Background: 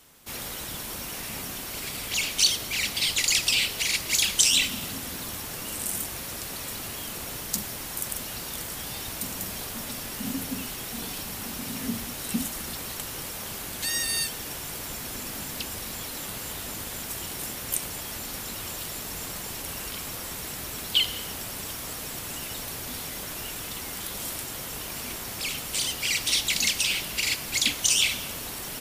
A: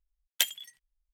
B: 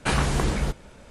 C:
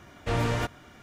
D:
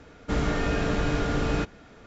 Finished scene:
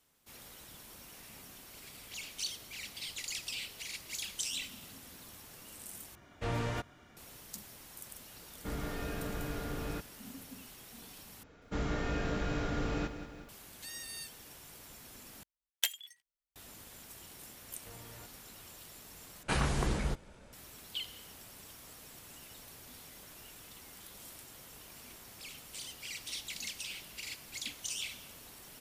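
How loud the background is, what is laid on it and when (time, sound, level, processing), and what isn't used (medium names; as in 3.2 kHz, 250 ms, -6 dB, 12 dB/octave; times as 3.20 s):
background -17 dB
6.15 s: replace with C -8 dB
8.36 s: add D -13 dB
11.43 s: replace with D -9 dB + bit-crushed delay 186 ms, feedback 55%, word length 9-bit, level -10.5 dB
15.43 s: replace with A -5.5 dB + high-pass 370 Hz 6 dB/octave
17.60 s: add C -15 dB + compression, threshold -35 dBFS
19.43 s: replace with B -8 dB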